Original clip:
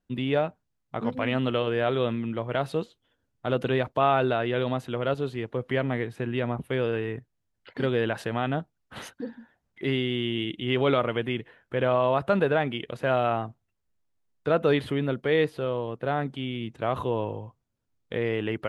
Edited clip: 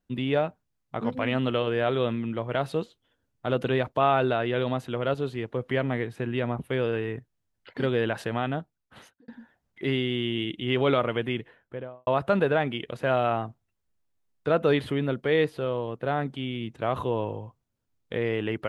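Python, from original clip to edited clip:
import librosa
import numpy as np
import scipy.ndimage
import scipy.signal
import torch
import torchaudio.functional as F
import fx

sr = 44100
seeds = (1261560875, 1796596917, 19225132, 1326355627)

y = fx.studio_fade_out(x, sr, start_s=11.37, length_s=0.7)
y = fx.edit(y, sr, fx.fade_out_span(start_s=8.36, length_s=0.92), tone=tone)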